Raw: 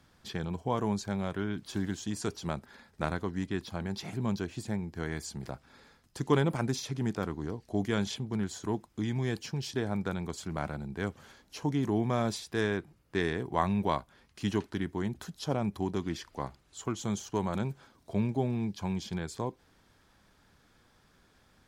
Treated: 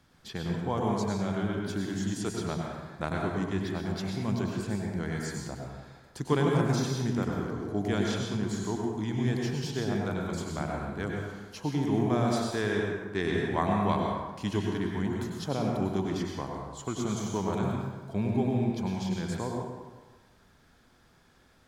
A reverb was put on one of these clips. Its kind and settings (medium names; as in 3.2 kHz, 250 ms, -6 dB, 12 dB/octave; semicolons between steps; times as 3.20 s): plate-style reverb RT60 1.3 s, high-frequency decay 0.6×, pre-delay 85 ms, DRR -0.5 dB; trim -1 dB